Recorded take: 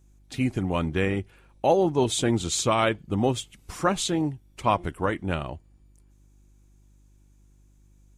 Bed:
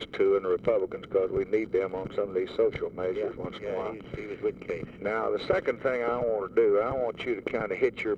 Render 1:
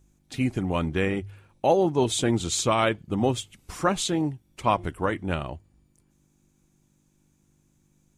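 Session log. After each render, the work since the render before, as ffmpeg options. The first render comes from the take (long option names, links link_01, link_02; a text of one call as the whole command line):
ffmpeg -i in.wav -af "bandreject=frequency=50:width_type=h:width=4,bandreject=frequency=100:width_type=h:width=4" out.wav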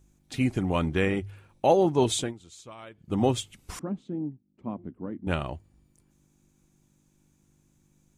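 ffmpeg -i in.wav -filter_complex "[0:a]asettb=1/sr,asplit=3[link_01][link_02][link_03];[link_01]atrim=end=3.794[link_04];[link_02]atrim=start=3.79:end=5.27,asetpts=PTS-STARTPTS,afade=type=in:duration=0.004:curve=qsin,afade=type=out:start_time=1.476:duration=0.004:curve=qsin,bandpass=frequency=230:width_type=q:width=2.8[link_05];[link_03]atrim=start=5.266[link_06];[link_04][link_05]acrossfade=duration=0.004:curve1=hsin:curve2=qsin[link_07];[link_07][link_06]acrossfade=duration=0.004:curve1=qsin:curve2=hsin,asplit=3[link_08][link_09][link_10];[link_08]atrim=end=2.34,asetpts=PTS-STARTPTS,afade=type=out:start_time=2.13:duration=0.21:silence=0.0749894[link_11];[link_09]atrim=start=2.34:end=2.95,asetpts=PTS-STARTPTS,volume=-22.5dB[link_12];[link_10]atrim=start=2.95,asetpts=PTS-STARTPTS,afade=type=in:duration=0.21:silence=0.0749894[link_13];[link_11][link_12][link_13]concat=n=3:v=0:a=1" out.wav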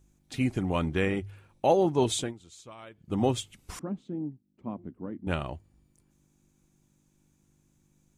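ffmpeg -i in.wav -af "volume=-2dB" out.wav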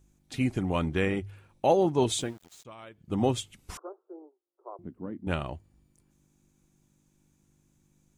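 ffmpeg -i in.wav -filter_complex "[0:a]asettb=1/sr,asplit=3[link_01][link_02][link_03];[link_01]atrim=end=2.104[link_04];[link_02]atrim=start=2.1:end=2.65,asetpts=PTS-STARTPTS,afade=type=in:duration=0.004:curve=qsin,afade=type=out:start_time=0.546:duration=0.004:curve=qsin,aeval=exprs='val(0)*gte(abs(val(0)),0.00335)':channel_layout=same[link_05];[link_03]atrim=start=2.646[link_06];[link_04][link_05]acrossfade=duration=0.004:curve1=hsin:curve2=qsin[link_07];[link_07][link_06]acrossfade=duration=0.004:curve1=qsin:curve2=hsin,asettb=1/sr,asplit=3[link_08][link_09][link_10];[link_08]atrim=end=3.774[link_11];[link_09]atrim=start=3.77:end=4.79,asetpts=PTS-STARTPTS,afade=type=in:duration=0.004:curve=qsin,afade=type=out:start_time=1.016:duration=0.004:curve=qsin,asuperpass=centerf=720:order=20:qfactor=0.66[link_12];[link_10]atrim=start=4.786[link_13];[link_11][link_12]acrossfade=duration=0.004:curve1=hsin:curve2=qsin[link_14];[link_14][link_13]acrossfade=duration=0.004:curve1=qsin:curve2=hsin" out.wav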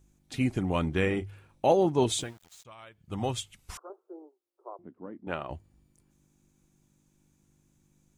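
ffmpeg -i in.wav -filter_complex "[0:a]asettb=1/sr,asplit=3[link_01][link_02][link_03];[link_01]atrim=end=0.954[link_04];[link_02]atrim=start=0.95:end=1.73,asetpts=PTS-STARTPTS,afade=type=in:duration=0.004:curve=qsin,afade=type=out:start_time=0.776:duration=0.004:curve=qsin,asplit=2[link_05][link_06];[link_06]adelay=33,volume=-12.5dB[link_07];[link_05][link_07]amix=inputs=2:normalize=0,atrim=end_sample=34398[link_08];[link_03]atrim=start=1.726[link_09];[link_04][link_08]acrossfade=duration=0.004:curve1=hsin:curve2=qsin[link_10];[link_10][link_09]acrossfade=duration=0.004:curve1=qsin:curve2=hsin,asettb=1/sr,asplit=3[link_11][link_12][link_13];[link_11]atrim=end=2.234[link_14];[link_12]atrim=start=2.23:end=3.9,asetpts=PTS-STARTPTS,afade=type=in:duration=0.004:curve=qsin,afade=type=out:start_time=1.666:duration=0.004:curve=qsin,equalizer=frequency=290:width_type=o:width=1.9:gain=-9[link_15];[link_13]atrim=start=3.896[link_16];[link_14][link_15]acrossfade=duration=0.004:curve1=hsin:curve2=qsin[link_17];[link_17][link_16]acrossfade=duration=0.004:curve1=qsin:curve2=hsin,asettb=1/sr,asplit=3[link_18][link_19][link_20];[link_18]atrim=end=4.734[link_21];[link_19]atrim=start=4.73:end=5.5,asetpts=PTS-STARTPTS,afade=type=in:duration=0.004:curve=qsin,afade=type=out:start_time=0.766:duration=0.004:curve=qsin,bandpass=frequency=890:width_type=q:width=0.53[link_22];[link_20]atrim=start=5.496[link_23];[link_21][link_22]acrossfade=duration=0.004:curve1=hsin:curve2=qsin[link_24];[link_24][link_23]acrossfade=duration=0.004:curve1=qsin:curve2=hsin" out.wav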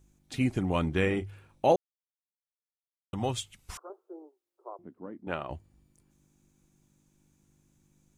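ffmpeg -i in.wav -filter_complex "[0:a]asplit=3[link_01][link_02][link_03];[link_01]atrim=end=1.76,asetpts=PTS-STARTPTS,afade=type=out:start_time=1.756:duration=0.004:curve=hsin[link_04];[link_02]atrim=start=1.76:end=3.13,asetpts=PTS-STARTPTS,volume=0[link_05];[link_03]atrim=start=3.13,asetpts=PTS-STARTPTS,afade=type=in:duration=0.004:curve=hsin[link_06];[link_04][link_05][link_06]concat=n=3:v=0:a=1" out.wav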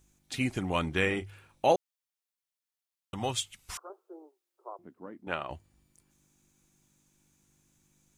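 ffmpeg -i in.wav -af "tiltshelf=frequency=770:gain=-4.5" out.wav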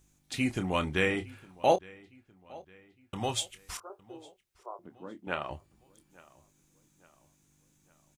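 ffmpeg -i in.wav -filter_complex "[0:a]asplit=2[link_01][link_02];[link_02]adelay=27,volume=-11dB[link_03];[link_01][link_03]amix=inputs=2:normalize=0,asplit=2[link_04][link_05];[link_05]adelay=860,lowpass=frequency=4900:poles=1,volume=-22.5dB,asplit=2[link_06][link_07];[link_07]adelay=860,lowpass=frequency=4900:poles=1,volume=0.48,asplit=2[link_08][link_09];[link_09]adelay=860,lowpass=frequency=4900:poles=1,volume=0.48[link_10];[link_04][link_06][link_08][link_10]amix=inputs=4:normalize=0" out.wav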